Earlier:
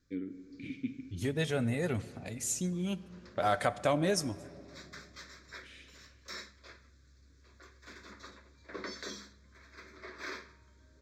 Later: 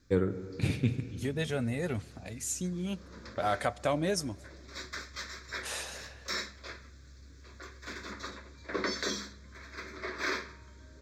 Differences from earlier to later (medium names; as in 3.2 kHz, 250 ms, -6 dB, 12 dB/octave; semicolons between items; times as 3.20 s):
first voice: remove vowel filter i; second voice: send -8.0 dB; background +9.0 dB